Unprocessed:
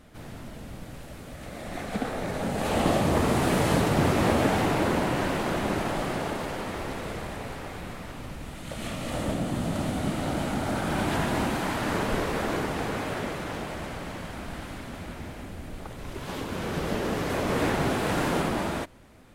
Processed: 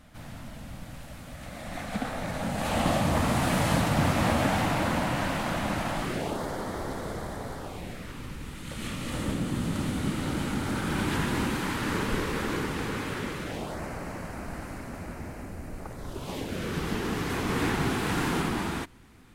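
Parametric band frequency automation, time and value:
parametric band −13 dB 0.51 octaves
0:05.96 400 Hz
0:06.40 2,600 Hz
0:07.57 2,600 Hz
0:08.12 670 Hz
0:13.39 670 Hz
0:13.81 3,400 Hz
0:15.91 3,400 Hz
0:16.81 590 Hz

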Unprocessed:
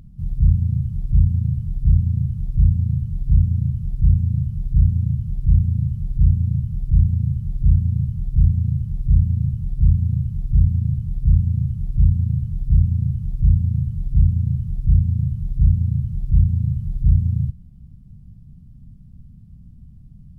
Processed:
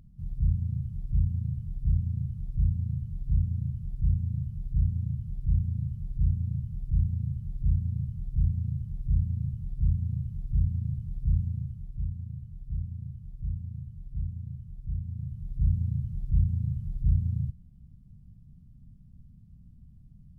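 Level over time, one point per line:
0:11.41 −10.5 dB
0:12.07 −18 dB
0:14.97 −18 dB
0:15.74 −9 dB

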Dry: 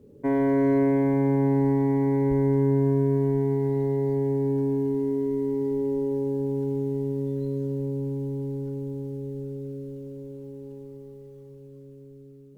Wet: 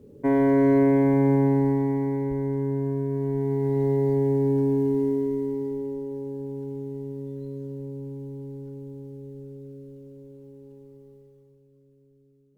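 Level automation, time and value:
0:01.33 +2.5 dB
0:02.35 −5 dB
0:03.09 −5 dB
0:03.88 +2.5 dB
0:05.04 +2.5 dB
0:06.04 −6.5 dB
0:11.15 −6.5 dB
0:11.65 −13 dB

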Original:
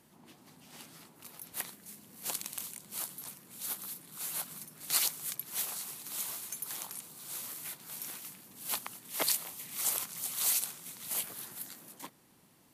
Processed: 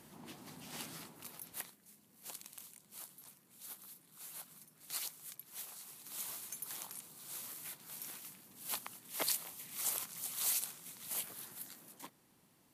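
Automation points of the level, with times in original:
0:00.93 +5 dB
0:01.53 −4 dB
0:01.75 −12 dB
0:05.75 −12 dB
0:06.28 −5 dB

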